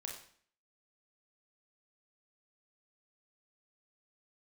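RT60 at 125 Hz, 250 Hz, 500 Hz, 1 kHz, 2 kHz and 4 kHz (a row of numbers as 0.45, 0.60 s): 0.55, 0.60, 0.55, 0.50, 0.55, 0.50 s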